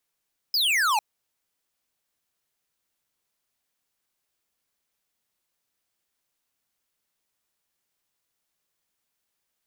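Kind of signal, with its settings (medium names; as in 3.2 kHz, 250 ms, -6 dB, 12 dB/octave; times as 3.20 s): laser zap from 5.2 kHz, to 800 Hz, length 0.45 s square, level -22 dB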